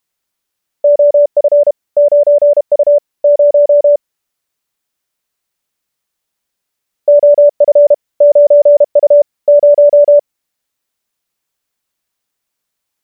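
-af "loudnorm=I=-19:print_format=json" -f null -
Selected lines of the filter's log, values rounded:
"input_i" : "-9.1",
"input_tp" : "-1.6",
"input_lra" : "13.3",
"input_thresh" : "-19.1",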